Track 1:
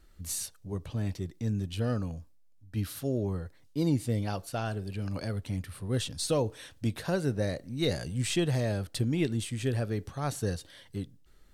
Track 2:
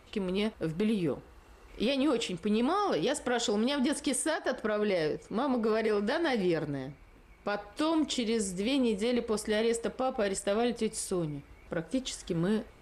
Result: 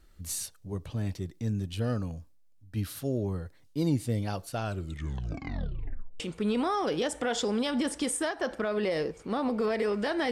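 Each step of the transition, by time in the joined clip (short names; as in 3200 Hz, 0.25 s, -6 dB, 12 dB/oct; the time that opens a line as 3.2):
track 1
4.61 tape stop 1.59 s
6.2 switch to track 2 from 2.25 s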